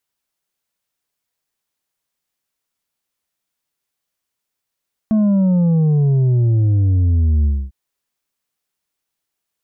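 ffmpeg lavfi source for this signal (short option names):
-f lavfi -i "aevalsrc='0.251*clip((2.6-t)/0.26,0,1)*tanh(1.78*sin(2*PI*220*2.6/log(65/220)*(exp(log(65/220)*t/2.6)-1)))/tanh(1.78)':d=2.6:s=44100"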